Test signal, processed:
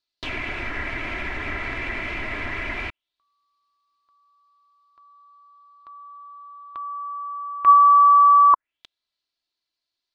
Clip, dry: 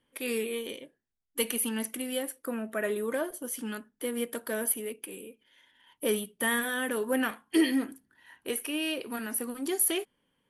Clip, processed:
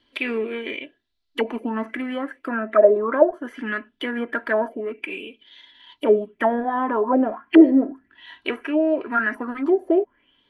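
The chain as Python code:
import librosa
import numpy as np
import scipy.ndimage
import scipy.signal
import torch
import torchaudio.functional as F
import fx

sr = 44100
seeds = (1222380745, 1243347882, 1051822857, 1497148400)

y = x + 0.57 * np.pad(x, (int(3.0 * sr / 1000.0), 0))[:len(x)]
y = fx.envelope_lowpass(y, sr, base_hz=570.0, top_hz=4300.0, q=5.2, full_db=-24.5, direction='down')
y = y * librosa.db_to_amplitude(6.5)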